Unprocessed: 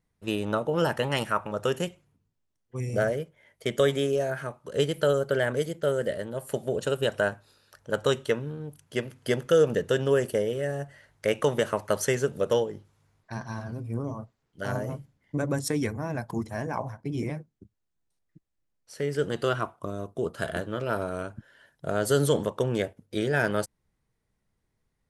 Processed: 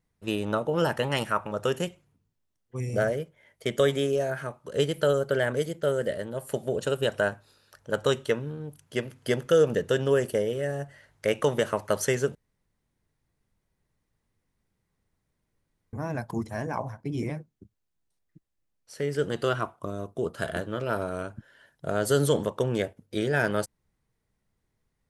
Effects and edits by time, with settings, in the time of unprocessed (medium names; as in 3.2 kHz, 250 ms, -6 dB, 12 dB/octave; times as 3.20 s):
12.35–15.93 s: room tone